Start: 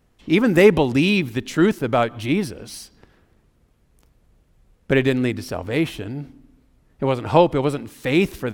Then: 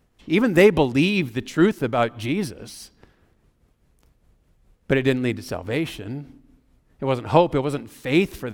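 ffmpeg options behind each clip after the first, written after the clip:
ffmpeg -i in.wav -af "tremolo=f=4.9:d=0.45" out.wav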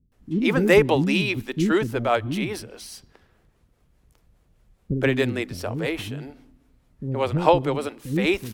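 ffmpeg -i in.wav -filter_complex "[0:a]acrossover=split=300[link_01][link_02];[link_02]adelay=120[link_03];[link_01][link_03]amix=inputs=2:normalize=0" out.wav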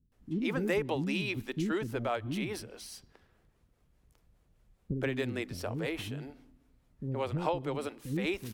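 ffmpeg -i in.wav -af "acompressor=threshold=-24dB:ratio=2.5,volume=-6.5dB" out.wav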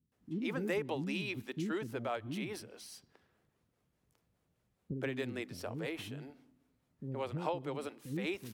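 ffmpeg -i in.wav -af "highpass=110,volume=-4.5dB" out.wav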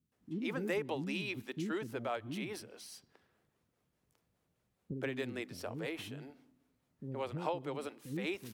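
ffmpeg -i in.wav -af "lowshelf=frequency=150:gain=-4" out.wav

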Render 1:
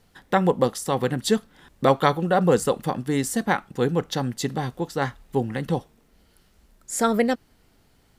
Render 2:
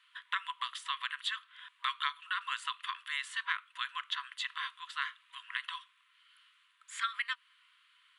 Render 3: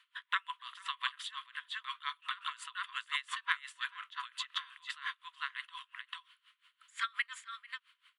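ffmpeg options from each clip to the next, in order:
ffmpeg -i in.wav -filter_complex "[0:a]highshelf=frequency=4200:width_type=q:width=3:gain=-9.5,afftfilt=real='re*between(b*sr/4096,970,11000)':imag='im*between(b*sr/4096,970,11000)':win_size=4096:overlap=0.75,acrossover=split=1700|7000[link_01][link_02][link_03];[link_01]acompressor=threshold=-39dB:ratio=4[link_04];[link_02]acompressor=threshold=-35dB:ratio=4[link_05];[link_03]acompressor=threshold=-59dB:ratio=4[link_06];[link_04][link_05][link_06]amix=inputs=3:normalize=0" out.wav
ffmpeg -i in.wav -af "aecho=1:1:443:0.631,aeval=exprs='val(0)*pow(10,-21*(0.5-0.5*cos(2*PI*5.7*n/s))/20)':channel_layout=same,volume=2.5dB" out.wav

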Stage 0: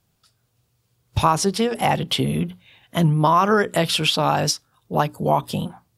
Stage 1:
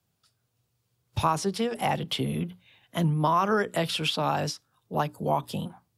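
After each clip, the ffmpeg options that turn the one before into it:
ffmpeg -i in.wav -filter_complex "[0:a]highpass=62,acrossover=split=160|430|4000[link_01][link_02][link_03][link_04];[link_04]alimiter=limit=-20.5dB:level=0:latency=1:release=107[link_05];[link_01][link_02][link_03][link_05]amix=inputs=4:normalize=0,volume=-7dB" out.wav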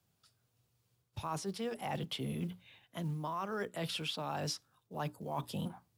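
ffmpeg -i in.wav -af "areverse,acompressor=threshold=-33dB:ratio=12,areverse,acrusher=bits=8:mode=log:mix=0:aa=0.000001,volume=-1.5dB" out.wav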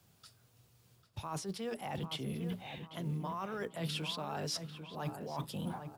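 ffmpeg -i in.wav -filter_complex "[0:a]areverse,acompressor=threshold=-46dB:ratio=12,areverse,asplit=2[link_01][link_02];[link_02]adelay=795,lowpass=frequency=1700:poles=1,volume=-7.5dB,asplit=2[link_03][link_04];[link_04]adelay=795,lowpass=frequency=1700:poles=1,volume=0.44,asplit=2[link_05][link_06];[link_06]adelay=795,lowpass=frequency=1700:poles=1,volume=0.44,asplit=2[link_07][link_08];[link_08]adelay=795,lowpass=frequency=1700:poles=1,volume=0.44,asplit=2[link_09][link_10];[link_10]adelay=795,lowpass=frequency=1700:poles=1,volume=0.44[link_11];[link_01][link_03][link_05][link_07][link_09][link_11]amix=inputs=6:normalize=0,volume=10dB" out.wav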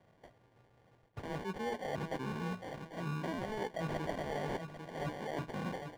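ffmpeg -i in.wav -filter_complex "[0:a]acrusher=samples=34:mix=1:aa=0.000001,asplit=2[link_01][link_02];[link_02]highpass=frequency=720:poles=1,volume=9dB,asoftclip=type=tanh:threshold=-25.5dB[link_03];[link_01][link_03]amix=inputs=2:normalize=0,lowpass=frequency=1400:poles=1,volume=-6dB,volume=2.5dB" out.wav

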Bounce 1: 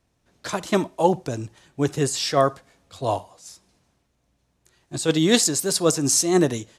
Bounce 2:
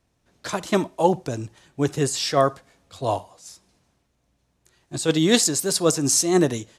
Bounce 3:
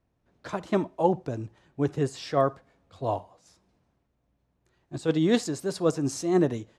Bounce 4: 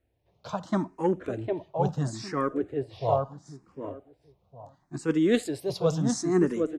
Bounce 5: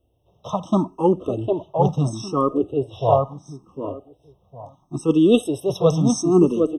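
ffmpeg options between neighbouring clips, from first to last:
ffmpeg -i in.wav -af anull out.wav
ffmpeg -i in.wav -af "lowpass=frequency=1300:poles=1,volume=-3.5dB" out.wav
ffmpeg -i in.wav -filter_complex "[0:a]asplit=2[link_01][link_02];[link_02]asoftclip=type=tanh:threshold=-19.5dB,volume=-11.5dB[link_03];[link_01][link_03]amix=inputs=2:normalize=0,asplit=2[link_04][link_05];[link_05]adelay=755,lowpass=frequency=1200:poles=1,volume=-3dB,asplit=2[link_06][link_07];[link_07]adelay=755,lowpass=frequency=1200:poles=1,volume=0.2,asplit=2[link_08][link_09];[link_09]adelay=755,lowpass=frequency=1200:poles=1,volume=0.2[link_10];[link_04][link_06][link_08][link_10]amix=inputs=4:normalize=0,asplit=2[link_11][link_12];[link_12]afreqshift=0.74[link_13];[link_11][link_13]amix=inputs=2:normalize=1" out.wav
ffmpeg -i in.wav -af "afftfilt=real='re*eq(mod(floor(b*sr/1024/1300),2),0)':imag='im*eq(mod(floor(b*sr/1024/1300),2),0)':win_size=1024:overlap=0.75,volume=8dB" out.wav

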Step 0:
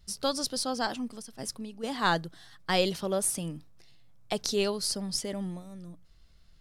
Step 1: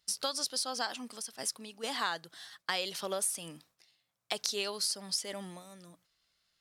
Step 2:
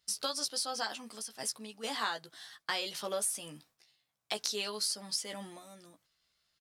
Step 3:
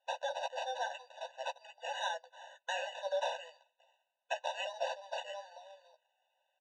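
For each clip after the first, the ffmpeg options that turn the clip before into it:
ffmpeg -i in.wav -af "agate=range=-10dB:threshold=-52dB:ratio=16:detection=peak,highpass=frequency=1300:poles=1,acompressor=threshold=-37dB:ratio=4,volume=6dB" out.wav
ffmpeg -i in.wav -filter_complex "[0:a]asplit=2[link_01][link_02];[link_02]adelay=14,volume=-5dB[link_03];[link_01][link_03]amix=inputs=2:normalize=0,volume=-2dB" out.wav
ffmpeg -i in.wav -af "acrusher=samples=9:mix=1:aa=0.000001,highpass=frequency=170:width=0.5412,highpass=frequency=170:width=1.3066,equalizer=frequency=300:width_type=q:width=4:gain=-6,equalizer=frequency=1900:width_type=q:width=4:gain=-9,equalizer=frequency=3000:width_type=q:width=4:gain=4,lowpass=frequency=5500:width=0.5412,lowpass=frequency=5500:width=1.3066,afftfilt=real='re*eq(mod(floor(b*sr/1024/500),2),1)':imag='im*eq(mod(floor(b*sr/1024/500),2),1)':win_size=1024:overlap=0.75,volume=2dB" out.wav

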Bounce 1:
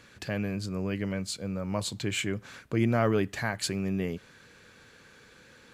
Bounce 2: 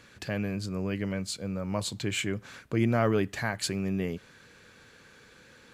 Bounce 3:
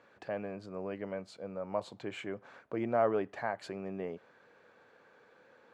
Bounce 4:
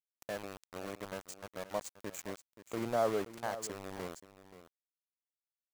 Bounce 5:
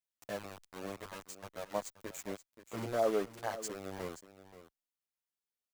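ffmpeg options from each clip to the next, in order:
ffmpeg -i in.wav -af anull out.wav
ffmpeg -i in.wav -af "bandpass=frequency=700:width_type=q:width=1.5:csg=0,volume=1.5dB" out.wav
ffmpeg -i in.wav -af "highshelf=frequency=4800:width_type=q:width=3:gain=13.5,aeval=exprs='val(0)*gte(abs(val(0)),0.0168)':channel_layout=same,aecho=1:1:528:0.2,volume=-2dB" out.wav
ffmpeg -i in.wav -filter_complex "[0:a]asplit=2[link_01][link_02];[link_02]adelay=8.7,afreqshift=-2[link_03];[link_01][link_03]amix=inputs=2:normalize=1,volume=2.5dB" out.wav

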